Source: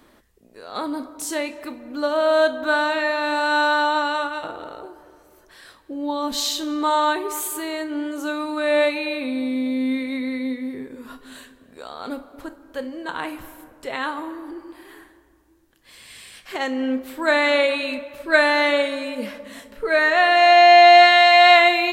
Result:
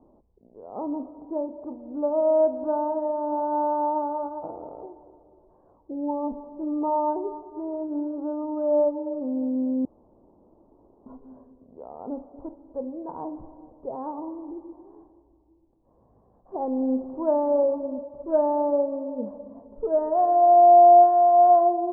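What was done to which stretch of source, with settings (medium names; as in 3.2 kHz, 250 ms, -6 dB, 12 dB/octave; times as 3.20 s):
9.85–11.06 s: room tone
16.56–17.87 s: jump at every zero crossing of -35.5 dBFS
whole clip: steep low-pass 930 Hz 48 dB/octave; trim -2 dB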